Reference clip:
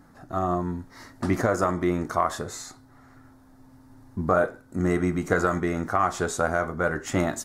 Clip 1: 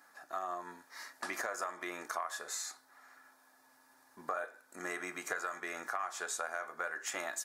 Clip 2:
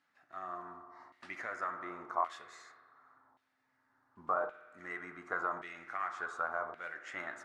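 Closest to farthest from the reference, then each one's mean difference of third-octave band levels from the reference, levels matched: 2, 1; 8.5, 11.0 dB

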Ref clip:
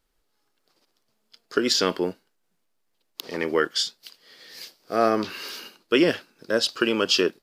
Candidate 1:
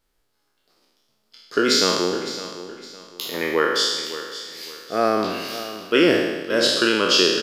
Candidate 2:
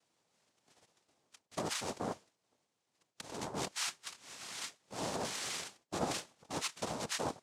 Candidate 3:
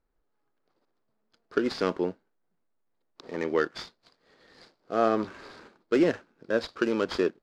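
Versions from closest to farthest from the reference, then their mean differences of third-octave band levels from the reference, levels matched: 3, 1, 2; 5.5, 8.0, 11.5 dB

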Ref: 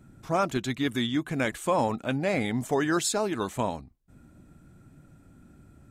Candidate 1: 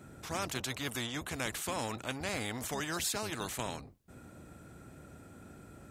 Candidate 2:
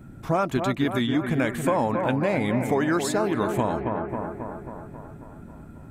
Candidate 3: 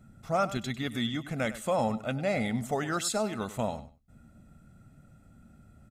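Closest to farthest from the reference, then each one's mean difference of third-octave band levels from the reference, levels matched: 3, 2, 1; 2.5, 6.5, 11.0 dB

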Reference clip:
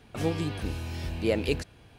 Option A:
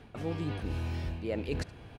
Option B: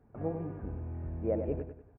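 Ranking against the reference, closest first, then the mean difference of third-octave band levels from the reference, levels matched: A, B; 4.5, 11.5 dB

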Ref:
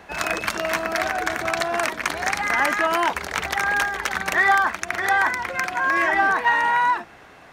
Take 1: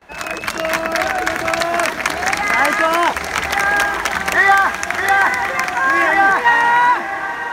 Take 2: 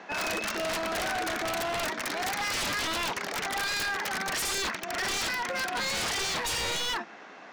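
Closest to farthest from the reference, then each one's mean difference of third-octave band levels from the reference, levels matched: 1, 2; 2.5, 8.0 dB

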